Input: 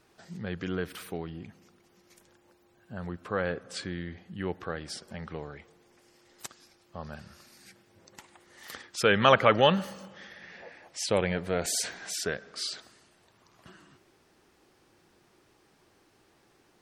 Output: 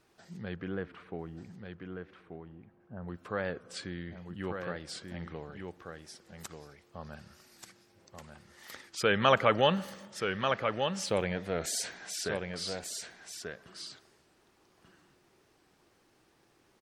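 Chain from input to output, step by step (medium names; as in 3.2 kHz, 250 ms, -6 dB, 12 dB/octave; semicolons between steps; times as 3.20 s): 0.55–3.07 s: low-pass 2.2 kHz -> 1.1 kHz 12 dB/octave; delay 1187 ms -6 dB; warped record 45 rpm, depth 100 cents; trim -4 dB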